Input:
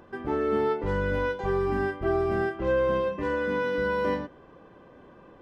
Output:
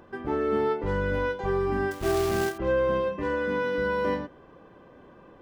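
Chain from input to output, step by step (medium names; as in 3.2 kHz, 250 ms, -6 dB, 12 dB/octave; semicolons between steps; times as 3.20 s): 1.91–2.58 s: companded quantiser 4-bit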